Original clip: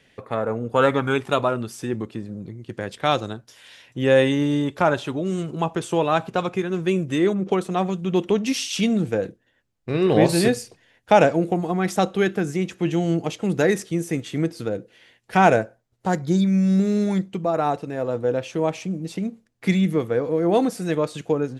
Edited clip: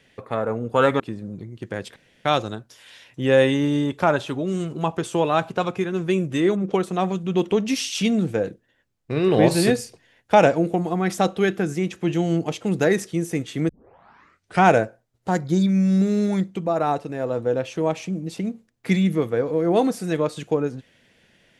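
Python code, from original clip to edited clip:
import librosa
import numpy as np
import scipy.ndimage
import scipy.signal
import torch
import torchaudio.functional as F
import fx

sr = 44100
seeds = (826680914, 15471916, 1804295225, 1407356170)

y = fx.edit(x, sr, fx.cut(start_s=1.0, length_s=1.07),
    fx.insert_room_tone(at_s=3.03, length_s=0.29),
    fx.tape_start(start_s=14.47, length_s=0.94), tone=tone)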